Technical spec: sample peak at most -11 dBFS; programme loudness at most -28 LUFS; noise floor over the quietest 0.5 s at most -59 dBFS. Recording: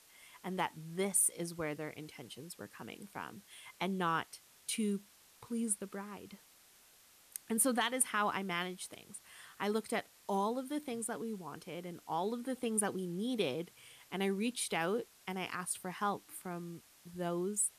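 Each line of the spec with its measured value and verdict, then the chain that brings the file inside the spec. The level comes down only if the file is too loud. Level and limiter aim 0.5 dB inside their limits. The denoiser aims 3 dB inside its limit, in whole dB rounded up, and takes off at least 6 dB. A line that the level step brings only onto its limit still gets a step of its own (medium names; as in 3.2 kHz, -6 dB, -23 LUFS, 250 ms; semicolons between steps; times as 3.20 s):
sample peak -18.5 dBFS: pass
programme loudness -37.0 LUFS: pass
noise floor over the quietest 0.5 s -64 dBFS: pass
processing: none needed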